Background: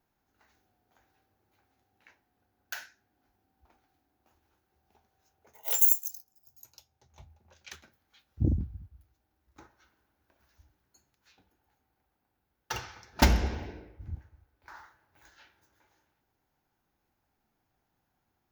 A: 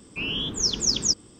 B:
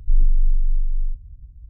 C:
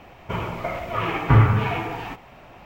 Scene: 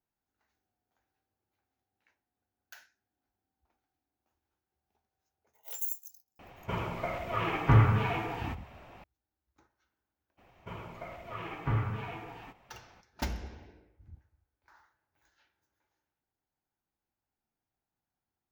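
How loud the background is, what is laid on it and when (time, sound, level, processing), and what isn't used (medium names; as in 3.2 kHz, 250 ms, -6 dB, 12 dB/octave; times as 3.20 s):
background -13 dB
6.39 s: add C -6.5 dB
10.37 s: add C -15.5 dB, fades 0.02 s
not used: A, B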